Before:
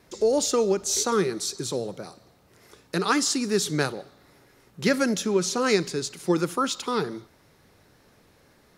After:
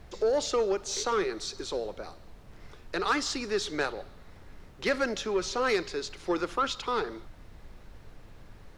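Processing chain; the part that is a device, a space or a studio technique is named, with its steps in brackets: aircraft cabin announcement (BPF 430–4000 Hz; soft clip -18.5 dBFS, distortion -17 dB; brown noise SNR 15 dB)

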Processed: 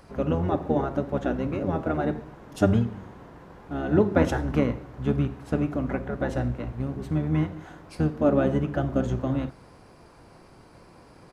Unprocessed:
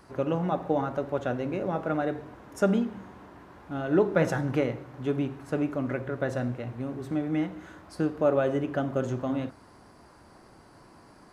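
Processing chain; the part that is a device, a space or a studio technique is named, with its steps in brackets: octave pedal (harmoniser -12 st 0 dB)

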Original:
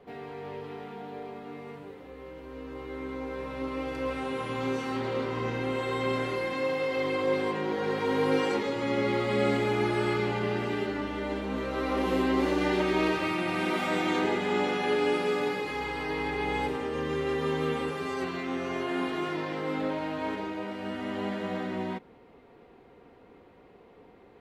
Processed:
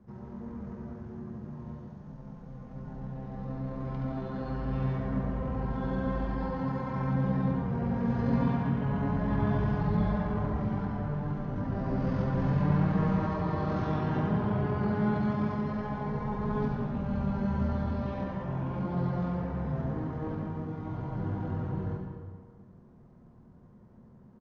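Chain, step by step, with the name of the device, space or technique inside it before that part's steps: monster voice (pitch shift -12 st; formant shift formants -2.5 st; low shelf 110 Hz +4.5 dB; echo 74 ms -6.5 dB; reverb RT60 1.6 s, pre-delay 87 ms, DRR 4 dB); gain -3.5 dB

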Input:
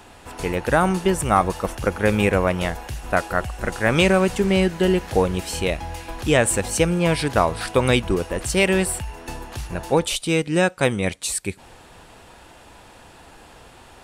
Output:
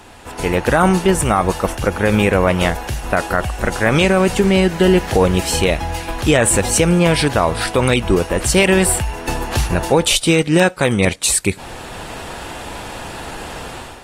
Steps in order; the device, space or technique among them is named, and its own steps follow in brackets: low-bitrate web radio (AGC gain up to 11.5 dB; limiter -7.5 dBFS, peak gain reduction 6.5 dB; gain +4 dB; AAC 48 kbps 48000 Hz)

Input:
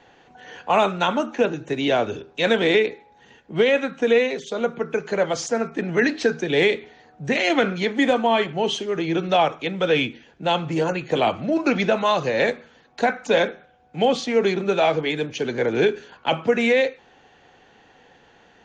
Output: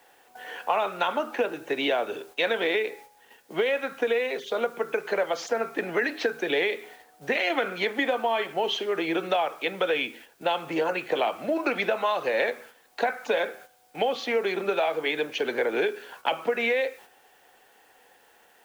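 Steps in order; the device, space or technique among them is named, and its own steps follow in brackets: baby monitor (BPF 450–3500 Hz; compressor, threshold -25 dBFS, peak gain reduction 10.5 dB; white noise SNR 30 dB; gate -50 dBFS, range -7 dB); gain +3 dB

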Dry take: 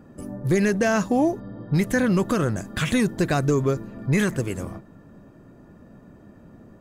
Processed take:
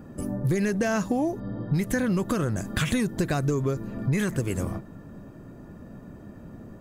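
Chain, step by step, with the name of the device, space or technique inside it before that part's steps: ASMR close-microphone chain (low shelf 180 Hz +4 dB; compressor 5:1, threshold -25 dBFS, peak gain reduction 9.5 dB; high shelf 9600 Hz +5.5 dB); gain +2.5 dB

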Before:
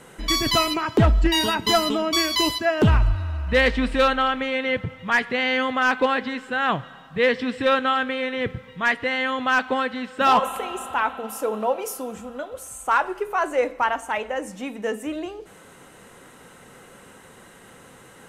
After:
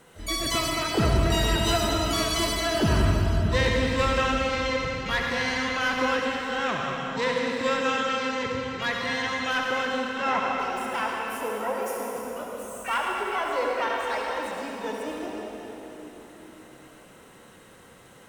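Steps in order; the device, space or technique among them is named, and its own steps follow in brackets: 10.07–10.6 air absorption 360 m; shimmer-style reverb (harmoniser +12 st -7 dB; reverb RT60 4.0 s, pre-delay 57 ms, DRR -1.5 dB); gain -8.5 dB

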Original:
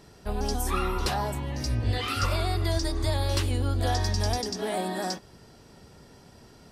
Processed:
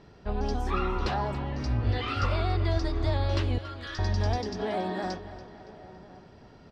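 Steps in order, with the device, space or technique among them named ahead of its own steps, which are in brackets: 3.58–3.99 steep high-pass 1100 Hz 96 dB/oct; shout across a valley (air absorption 200 m; outdoor echo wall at 180 m, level -20 dB); tape echo 0.282 s, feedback 65%, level -13.5 dB, low-pass 4600 Hz

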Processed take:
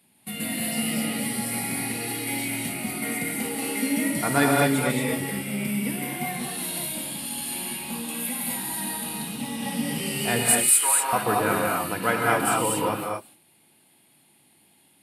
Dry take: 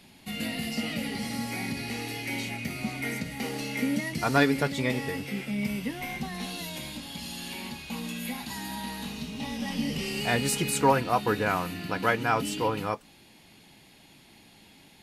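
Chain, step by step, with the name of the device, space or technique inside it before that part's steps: gate -47 dBFS, range -11 dB; budget condenser microphone (HPF 100 Hz 24 dB/oct; resonant high shelf 7500 Hz +7.5 dB, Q 3); 10.43–11.13 HPF 1200 Hz 12 dB/oct; non-linear reverb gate 0.27 s rising, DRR -1.5 dB

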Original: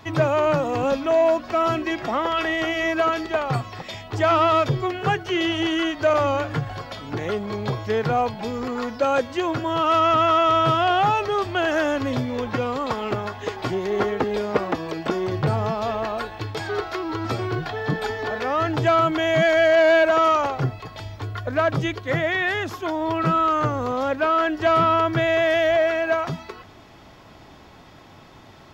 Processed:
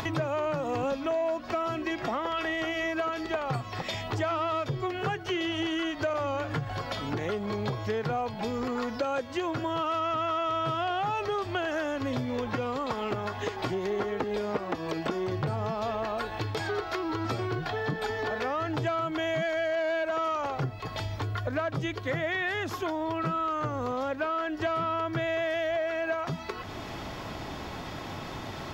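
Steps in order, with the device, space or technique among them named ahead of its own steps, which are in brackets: upward and downward compression (upward compressor, threshold -22 dBFS; compressor, threshold -23 dBFS, peak gain reduction 10 dB); gain -3.5 dB

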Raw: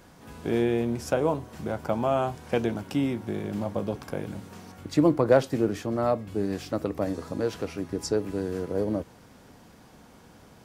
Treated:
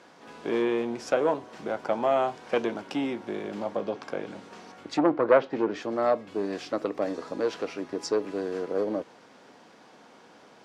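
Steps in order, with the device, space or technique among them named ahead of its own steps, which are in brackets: public-address speaker with an overloaded transformer (core saturation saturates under 560 Hz; BPF 330–5400 Hz); 3.69–5.82 treble ducked by the level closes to 2400 Hz, closed at -22.5 dBFS; gain +2.5 dB

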